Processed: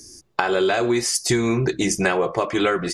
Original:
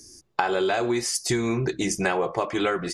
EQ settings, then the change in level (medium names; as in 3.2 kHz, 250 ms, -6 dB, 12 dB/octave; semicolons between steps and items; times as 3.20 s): dynamic bell 830 Hz, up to -5 dB, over -39 dBFS, Q 4.2; +4.5 dB